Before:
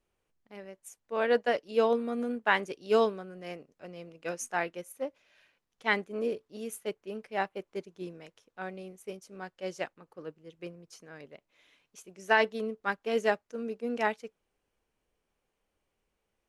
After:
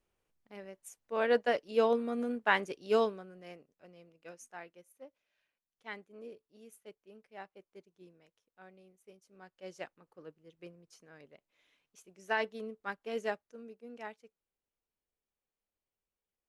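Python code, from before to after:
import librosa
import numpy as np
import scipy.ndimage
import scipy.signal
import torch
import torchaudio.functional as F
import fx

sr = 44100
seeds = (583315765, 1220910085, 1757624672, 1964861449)

y = fx.gain(x, sr, db=fx.line((2.83, -2.0), (3.54, -9.0), (4.61, -16.5), (9.11, -16.5), (9.81, -8.0), (13.3, -8.0), (13.8, -15.5)))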